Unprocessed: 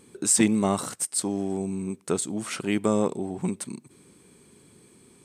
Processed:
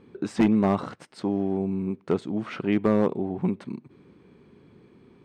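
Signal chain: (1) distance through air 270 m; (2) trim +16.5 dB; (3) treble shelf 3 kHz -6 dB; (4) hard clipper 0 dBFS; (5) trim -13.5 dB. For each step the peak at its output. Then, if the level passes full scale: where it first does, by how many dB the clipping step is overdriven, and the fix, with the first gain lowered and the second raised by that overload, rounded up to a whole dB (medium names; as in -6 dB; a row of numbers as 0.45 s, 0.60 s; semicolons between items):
-10.0 dBFS, +6.5 dBFS, +6.5 dBFS, 0.0 dBFS, -13.5 dBFS; step 2, 6.5 dB; step 2 +9.5 dB, step 5 -6.5 dB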